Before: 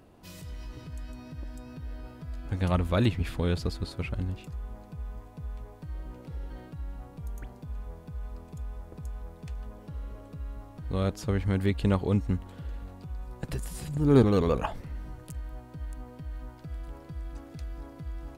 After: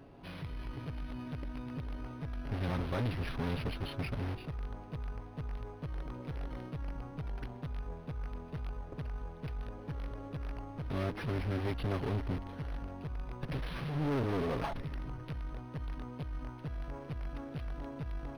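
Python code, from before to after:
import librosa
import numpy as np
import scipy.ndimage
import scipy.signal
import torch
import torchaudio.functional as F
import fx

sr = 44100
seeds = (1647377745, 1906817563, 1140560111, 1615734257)

p1 = x + 0.55 * np.pad(x, (int(7.3 * sr / 1000.0), 0))[:len(x)]
p2 = fx.tube_stage(p1, sr, drive_db=29.0, bias=0.5)
p3 = (np.mod(10.0 ** (35.0 / 20.0) * p2 + 1.0, 2.0) - 1.0) / 10.0 ** (35.0 / 20.0)
p4 = p2 + F.gain(torch.from_numpy(p3), -4.0).numpy()
p5 = np.interp(np.arange(len(p4)), np.arange(len(p4))[::6], p4[::6])
y = F.gain(torch.from_numpy(p5), -1.0).numpy()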